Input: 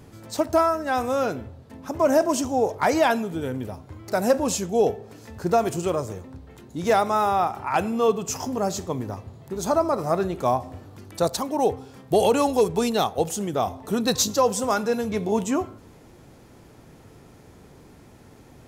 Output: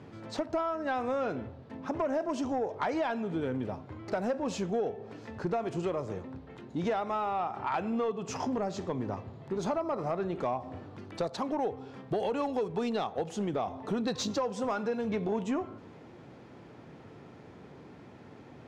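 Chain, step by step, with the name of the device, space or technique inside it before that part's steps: AM radio (BPF 120–3300 Hz; compressor 6:1, threshold -27 dBFS, peak gain reduction 12.5 dB; soft clip -21.5 dBFS, distortion -20 dB)

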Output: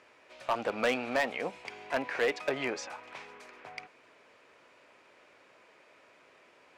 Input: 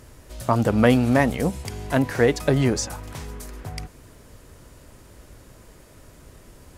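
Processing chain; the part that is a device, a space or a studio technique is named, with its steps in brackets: megaphone (BPF 560–3300 Hz; bell 2400 Hz +8.5 dB 0.33 oct; hard clip -17.5 dBFS, distortion -10 dB); gain -4.5 dB

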